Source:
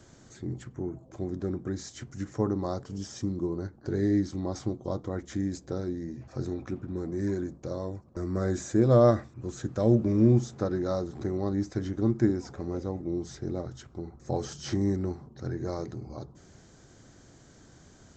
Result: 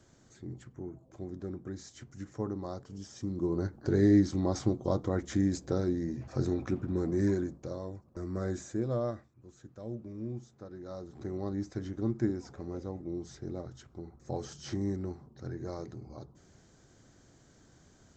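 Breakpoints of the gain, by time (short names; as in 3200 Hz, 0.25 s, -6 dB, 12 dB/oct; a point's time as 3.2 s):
3.15 s -7.5 dB
3.59 s +2.5 dB
7.21 s +2.5 dB
7.8 s -5.5 dB
8.51 s -5.5 dB
9.34 s -18 dB
10.65 s -18 dB
11.34 s -6 dB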